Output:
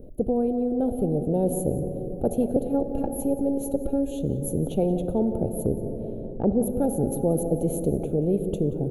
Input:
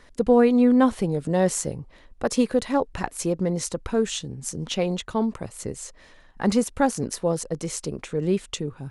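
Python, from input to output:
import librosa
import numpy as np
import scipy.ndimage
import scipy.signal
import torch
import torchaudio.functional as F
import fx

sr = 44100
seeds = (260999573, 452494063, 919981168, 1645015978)

y = fx.robotise(x, sr, hz=278.0, at=(2.56, 4.18))
y = scipy.signal.sosfilt(scipy.signal.cheby2(4, 40, [1000.0, 8900.0], 'bandstop', fs=sr, output='sos'), y)
y = fx.rider(y, sr, range_db=5, speed_s=0.5)
y = fx.env_lowpass_down(y, sr, base_hz=790.0, full_db=-29.5, at=(5.63, 6.62), fade=0.02)
y = y + 10.0 ** (-18.0 / 20.0) * np.pad(y, (int(180 * sr / 1000.0), 0))[:len(y)]
y = fx.rev_plate(y, sr, seeds[0], rt60_s=3.3, hf_ratio=0.4, predelay_ms=0, drr_db=12.5)
y = fx.spectral_comp(y, sr, ratio=2.0)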